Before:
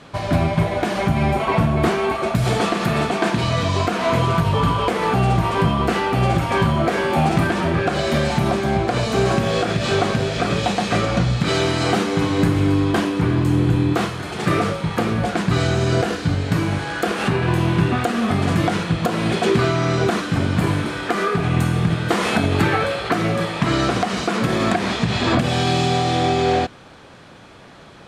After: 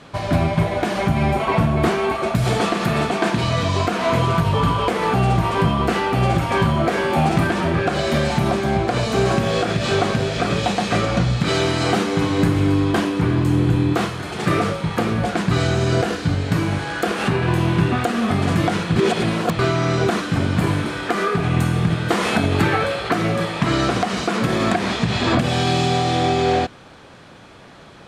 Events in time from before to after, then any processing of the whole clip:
18.96–19.59 reverse

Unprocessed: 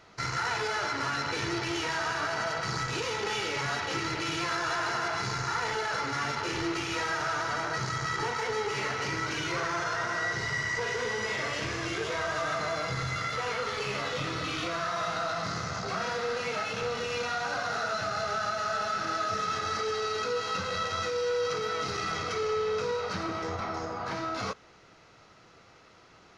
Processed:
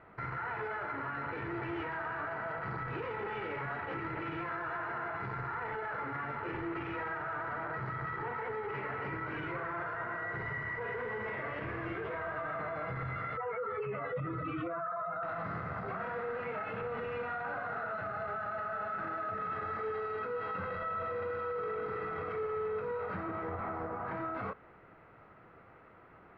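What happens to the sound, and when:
13.37–15.23 spectral contrast raised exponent 2
20.75–21.72 reverb throw, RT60 2.4 s, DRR -6 dB
whole clip: LPF 2000 Hz 24 dB/oct; limiter -30 dBFS

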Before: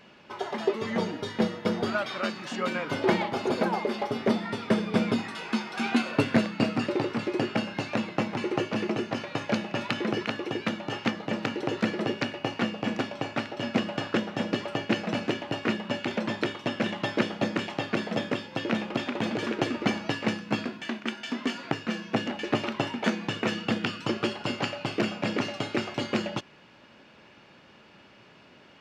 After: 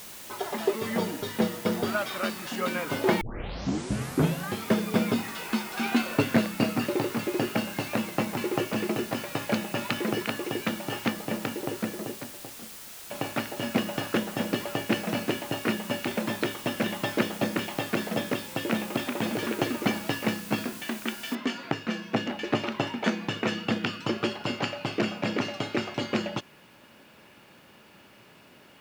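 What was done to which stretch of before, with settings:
3.21 tape start 1.47 s
10.91–13.1 studio fade out
21.35 noise floor step -44 dB -66 dB

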